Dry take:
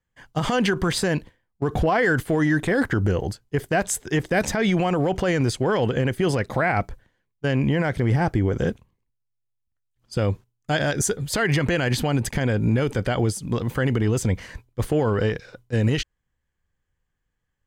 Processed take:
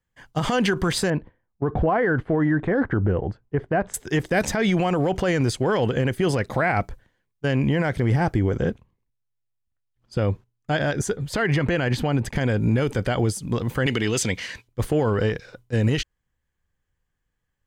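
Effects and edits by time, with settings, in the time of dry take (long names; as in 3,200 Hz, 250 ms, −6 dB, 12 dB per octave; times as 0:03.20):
0:01.10–0:03.94: low-pass filter 1,500 Hz
0:08.57–0:12.36: high-shelf EQ 4,800 Hz −11 dB
0:13.86–0:14.68: meter weighting curve D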